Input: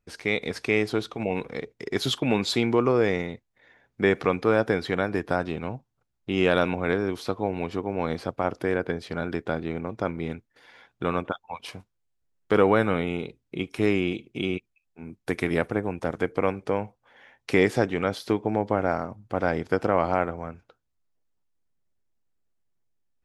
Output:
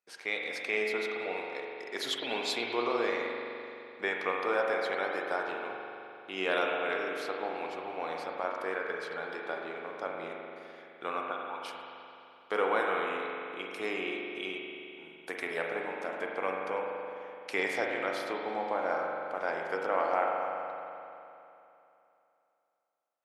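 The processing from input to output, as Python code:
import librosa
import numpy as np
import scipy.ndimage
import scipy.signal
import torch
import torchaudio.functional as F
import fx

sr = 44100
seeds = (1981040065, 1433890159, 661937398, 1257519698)

y = scipy.signal.sosfilt(scipy.signal.butter(2, 580.0, 'highpass', fs=sr, output='sos'), x)
y = fx.rev_spring(y, sr, rt60_s=2.9, pass_ms=(42,), chirp_ms=70, drr_db=-0.5)
y = y * librosa.db_to_amplitude(-6.0)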